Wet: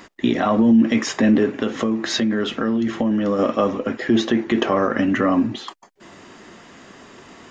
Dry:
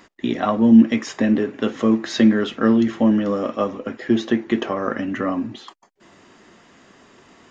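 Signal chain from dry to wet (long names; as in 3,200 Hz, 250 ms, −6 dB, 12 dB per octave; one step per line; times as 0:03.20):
brickwall limiter −14.5 dBFS, peak gain reduction 11 dB
0:01.52–0:03.39: downward compressor 3 to 1, threshold −25 dBFS, peak gain reduction 6 dB
level +6.5 dB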